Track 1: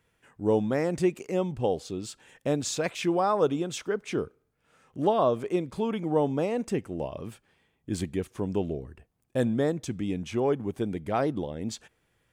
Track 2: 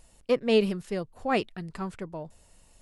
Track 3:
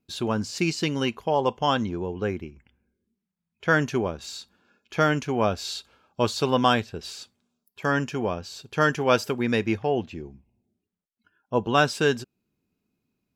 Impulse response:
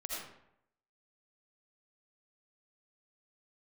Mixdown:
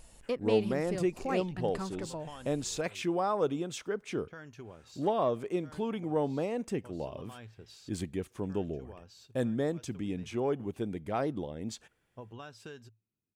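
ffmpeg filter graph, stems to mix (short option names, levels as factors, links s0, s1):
-filter_complex "[0:a]acontrast=82,volume=0.251,asplit=2[s0][s1];[1:a]acompressor=threshold=0.00891:ratio=2,volume=1.26[s2];[2:a]equalizer=f=110:t=o:w=0.23:g=12,acompressor=threshold=0.0501:ratio=16,adelay=650,volume=0.158[s3];[s1]apad=whole_len=617561[s4];[s3][s4]sidechaincompress=threshold=0.00447:ratio=5:attack=44:release=150[s5];[s0][s2][s5]amix=inputs=3:normalize=0"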